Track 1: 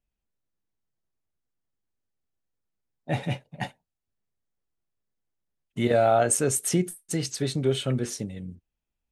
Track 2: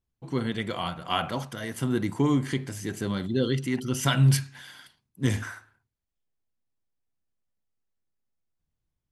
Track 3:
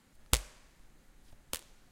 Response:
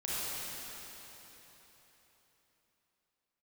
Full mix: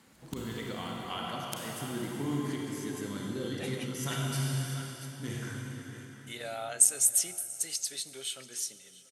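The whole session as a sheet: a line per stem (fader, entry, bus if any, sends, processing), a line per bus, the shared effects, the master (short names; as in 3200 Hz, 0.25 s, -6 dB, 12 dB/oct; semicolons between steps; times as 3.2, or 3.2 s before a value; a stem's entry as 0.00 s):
+1.5 dB, 0.50 s, no bus, send -20.5 dB, echo send -20.5 dB, differentiator
-11.5 dB, 0.00 s, bus A, send -3.5 dB, echo send -13 dB, high shelf 7300 Hz +6.5 dB
+3.0 dB, 0.00 s, bus A, send -4.5 dB, no echo send, flipped gate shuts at -21 dBFS, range -34 dB
bus A: 0.0 dB, compressor, threshold -40 dBFS, peak gain reduction 12.5 dB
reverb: on, RT60 4.0 s, pre-delay 29 ms
echo: echo 0.686 s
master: HPF 110 Hz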